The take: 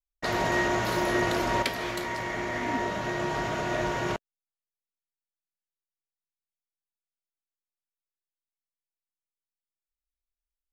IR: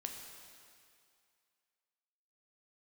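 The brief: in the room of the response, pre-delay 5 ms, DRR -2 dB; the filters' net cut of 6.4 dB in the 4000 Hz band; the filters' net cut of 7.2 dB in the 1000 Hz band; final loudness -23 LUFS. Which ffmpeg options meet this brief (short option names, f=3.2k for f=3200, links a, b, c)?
-filter_complex "[0:a]equalizer=f=1k:t=o:g=-8.5,equalizer=f=4k:t=o:g=-8,asplit=2[a][b];[1:a]atrim=start_sample=2205,adelay=5[c];[b][c]afir=irnorm=-1:irlink=0,volume=3.5dB[d];[a][d]amix=inputs=2:normalize=0,volume=4.5dB"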